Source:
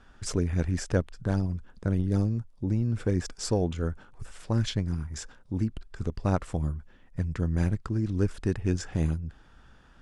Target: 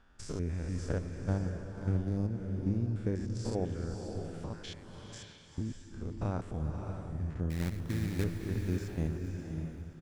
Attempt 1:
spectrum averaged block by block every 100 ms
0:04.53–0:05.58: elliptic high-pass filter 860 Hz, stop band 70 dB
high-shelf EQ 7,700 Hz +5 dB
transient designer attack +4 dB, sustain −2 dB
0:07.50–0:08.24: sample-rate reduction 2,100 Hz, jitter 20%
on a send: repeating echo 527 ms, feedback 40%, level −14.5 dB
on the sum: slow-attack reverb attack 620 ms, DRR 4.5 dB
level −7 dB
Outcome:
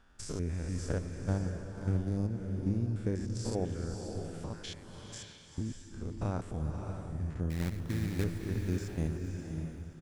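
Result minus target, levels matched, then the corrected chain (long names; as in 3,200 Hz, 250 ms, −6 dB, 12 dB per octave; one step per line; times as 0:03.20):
8,000 Hz band +4.0 dB
spectrum averaged block by block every 100 ms
0:04.53–0:05.58: elliptic high-pass filter 860 Hz, stop band 70 dB
high-shelf EQ 7,700 Hz −5.5 dB
transient designer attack +4 dB, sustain −2 dB
0:07.50–0:08.24: sample-rate reduction 2,100 Hz, jitter 20%
on a send: repeating echo 527 ms, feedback 40%, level −14.5 dB
on the sum: slow-attack reverb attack 620 ms, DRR 4.5 dB
level −7 dB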